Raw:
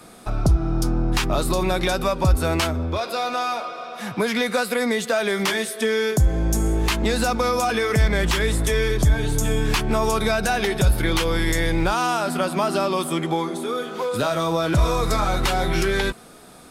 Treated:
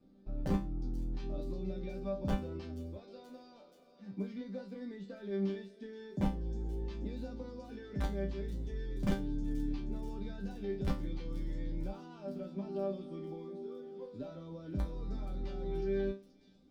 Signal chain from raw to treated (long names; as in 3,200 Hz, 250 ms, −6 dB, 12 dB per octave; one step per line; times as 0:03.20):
drawn EQ curve 410 Hz 0 dB, 1,100 Hz −15 dB, 4,900 Hz −4 dB, 11,000 Hz −27 dB
wrap-around overflow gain 10.5 dB
high-pass filter 68 Hz 6 dB per octave
spectral tilt −3.5 dB per octave
resonators tuned to a chord G3 sus4, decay 0.29 s
delay with a high-pass on its return 479 ms, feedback 69%, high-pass 5,400 Hz, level −8 dB
level −4 dB